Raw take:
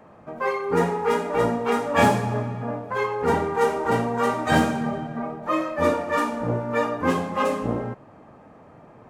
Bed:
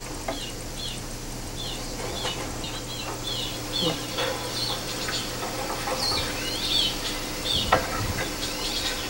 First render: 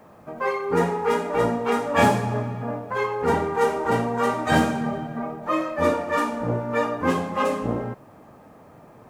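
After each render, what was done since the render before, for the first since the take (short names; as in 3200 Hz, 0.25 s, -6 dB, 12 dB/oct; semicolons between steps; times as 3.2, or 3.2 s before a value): bit-crush 11-bit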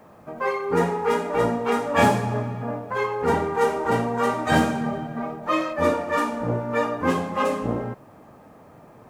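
5.1–5.73 dynamic EQ 3900 Hz, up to +7 dB, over -45 dBFS, Q 0.71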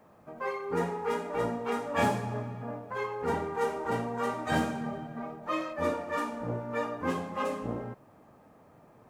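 gain -9 dB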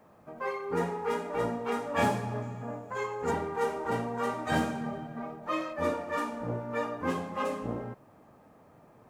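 2.42–3.31 bell 7000 Hz +14.5 dB 0.27 oct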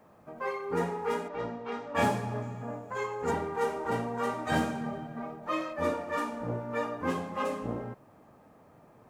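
1.28–1.95 ladder low-pass 6200 Hz, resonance 20%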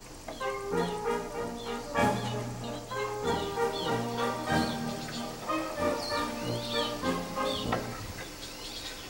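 add bed -12 dB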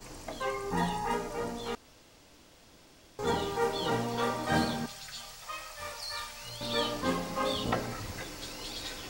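0.7–1.14 comb 1.1 ms; 1.75–3.19 room tone; 4.86–6.61 passive tone stack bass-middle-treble 10-0-10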